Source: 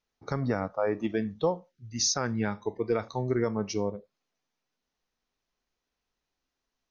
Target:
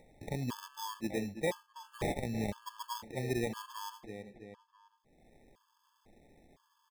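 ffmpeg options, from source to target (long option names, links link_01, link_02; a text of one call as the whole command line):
ffmpeg -i in.wav -filter_complex "[0:a]acrusher=samples=31:mix=1:aa=0.000001,asplit=2[link_01][link_02];[link_02]adelay=328,lowpass=frequency=4100:poles=1,volume=-10.5dB,asplit=2[link_03][link_04];[link_04]adelay=328,lowpass=frequency=4100:poles=1,volume=0.27,asplit=2[link_05][link_06];[link_06]adelay=328,lowpass=frequency=4100:poles=1,volume=0.27[link_07];[link_03][link_05][link_07]amix=inputs=3:normalize=0[link_08];[link_01][link_08]amix=inputs=2:normalize=0,acompressor=mode=upward:threshold=-32dB:ratio=2.5,afftfilt=real='re*gt(sin(2*PI*0.99*pts/sr)*(1-2*mod(floor(b*sr/1024/880),2)),0)':imag='im*gt(sin(2*PI*0.99*pts/sr)*(1-2*mod(floor(b*sr/1024/880),2)),0)':win_size=1024:overlap=0.75,volume=-6dB" out.wav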